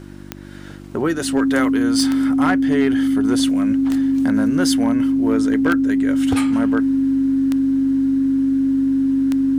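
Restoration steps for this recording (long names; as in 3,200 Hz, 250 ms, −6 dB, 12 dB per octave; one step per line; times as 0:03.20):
clipped peaks rebuilt −9.5 dBFS
click removal
hum removal 48.8 Hz, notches 7
notch filter 270 Hz, Q 30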